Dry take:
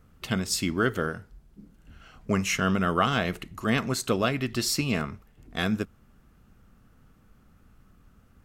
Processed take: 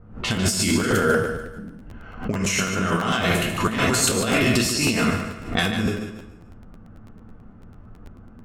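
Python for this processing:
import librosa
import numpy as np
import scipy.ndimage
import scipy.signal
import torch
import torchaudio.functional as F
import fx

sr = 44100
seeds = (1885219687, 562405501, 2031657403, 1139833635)

p1 = fx.peak_eq(x, sr, hz=8900.0, db=8.0, octaves=1.5)
p2 = fx.rev_plate(p1, sr, seeds[0], rt60_s=0.52, hf_ratio=0.9, predelay_ms=0, drr_db=-0.5)
p3 = fx.over_compress(p2, sr, threshold_db=-27.0, ratio=-1.0)
p4 = fx.comb_fb(p3, sr, f0_hz=59.0, decay_s=0.31, harmonics='all', damping=0.0, mix_pct=50)
p5 = fx.env_lowpass(p4, sr, base_hz=830.0, full_db=-27.0)
p6 = p5 + fx.echo_feedback(p5, sr, ms=146, feedback_pct=37, wet_db=-8.5, dry=0)
p7 = fx.buffer_crackle(p6, sr, first_s=0.35, period_s=0.11, block=512, kind='repeat')
p8 = fx.pre_swell(p7, sr, db_per_s=120.0)
y = F.gain(torch.from_numpy(p8), 8.5).numpy()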